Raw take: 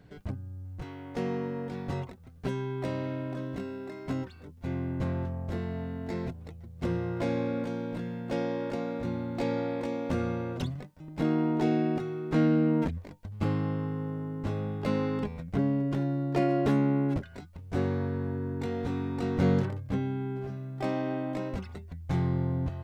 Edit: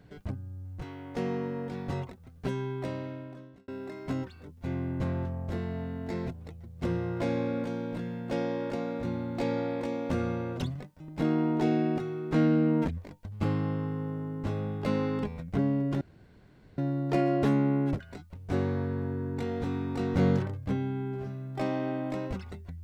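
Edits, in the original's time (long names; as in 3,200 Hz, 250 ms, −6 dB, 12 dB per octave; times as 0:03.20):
0:02.66–0:03.68: fade out
0:16.01: splice in room tone 0.77 s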